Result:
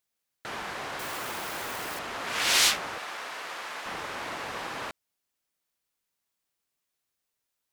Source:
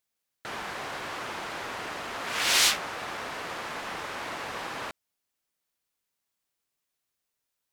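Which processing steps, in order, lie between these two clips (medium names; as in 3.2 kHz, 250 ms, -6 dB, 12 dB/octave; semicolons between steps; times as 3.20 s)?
0.99–1.99 s: zero-crossing glitches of -32.5 dBFS; 2.98–3.86 s: high-pass 790 Hz 6 dB/octave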